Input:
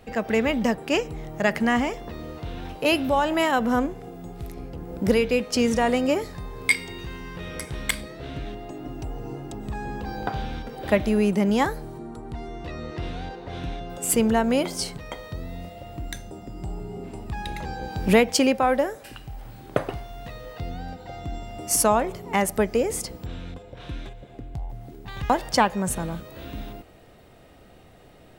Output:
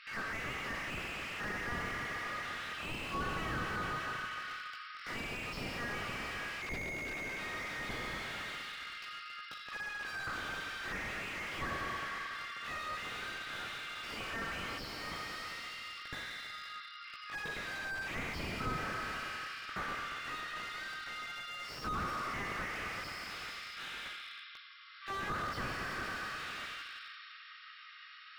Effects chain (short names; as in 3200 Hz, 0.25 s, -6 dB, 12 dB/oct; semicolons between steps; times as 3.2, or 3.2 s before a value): in parallel at -9 dB: soft clip -19.5 dBFS, distortion -10 dB; on the sum: chorus voices 4, 0.45 Hz, delay 18 ms, depth 3.7 ms; brick-wall FIR band-pass 1100–5600 Hz; reverse echo 72 ms -19 dB; Schroeder reverb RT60 2.6 s, combs from 30 ms, DRR 1.5 dB; slew limiter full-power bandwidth 10 Hz; gain +6 dB